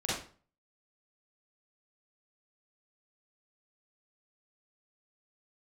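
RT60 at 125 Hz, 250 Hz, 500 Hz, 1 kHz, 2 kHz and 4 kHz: 0.50, 0.45, 0.45, 0.40, 0.35, 0.35 s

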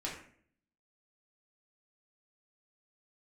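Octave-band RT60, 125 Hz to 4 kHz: 0.80, 0.75, 0.60, 0.50, 0.55, 0.40 s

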